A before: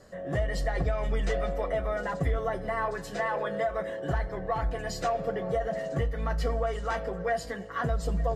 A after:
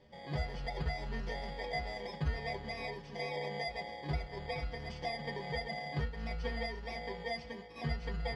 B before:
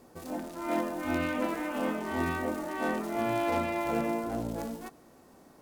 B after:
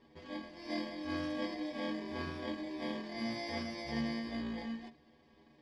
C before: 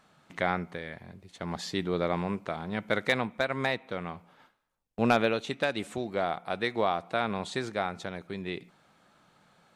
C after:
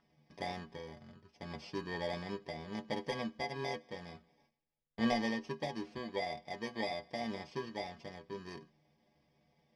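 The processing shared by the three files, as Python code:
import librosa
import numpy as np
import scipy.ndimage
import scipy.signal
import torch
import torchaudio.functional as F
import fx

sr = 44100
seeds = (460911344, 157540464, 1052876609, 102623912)

y = fx.bit_reversed(x, sr, seeds[0], block=32)
y = scipy.signal.sosfilt(scipy.signal.butter(4, 4600.0, 'lowpass', fs=sr, output='sos'), y)
y = fx.stiff_resonator(y, sr, f0_hz=73.0, decay_s=0.23, stiffness=0.008)
y = F.gain(torch.from_numpy(y), 1.0).numpy()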